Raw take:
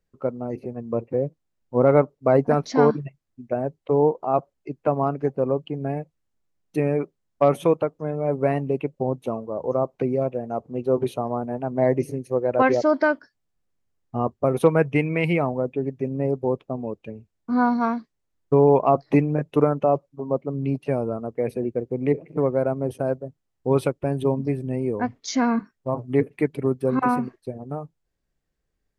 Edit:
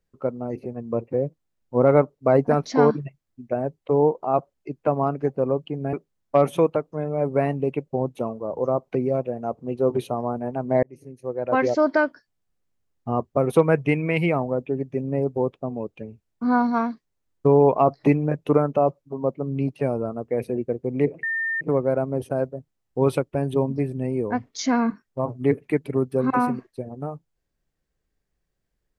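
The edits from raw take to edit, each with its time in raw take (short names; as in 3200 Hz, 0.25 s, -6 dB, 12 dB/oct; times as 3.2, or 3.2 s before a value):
5.93–7 cut
11.9–12.89 fade in
22.3 add tone 1810 Hz -22.5 dBFS 0.38 s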